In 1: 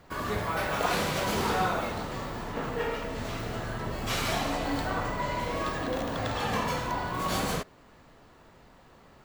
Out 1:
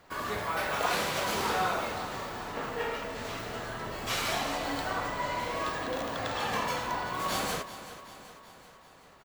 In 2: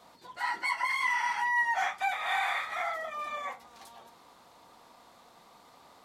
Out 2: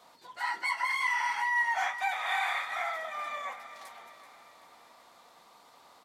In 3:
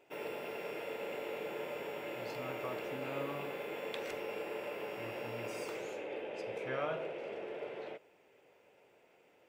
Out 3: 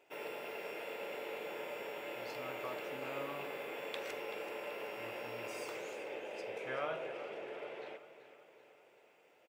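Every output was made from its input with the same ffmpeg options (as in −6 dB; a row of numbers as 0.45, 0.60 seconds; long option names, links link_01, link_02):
-af "lowshelf=frequency=320:gain=-9.5,aecho=1:1:382|764|1146|1528|1910|2292:0.211|0.118|0.0663|0.0371|0.0208|0.0116"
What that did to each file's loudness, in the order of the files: −1.5, −0.5, −2.0 LU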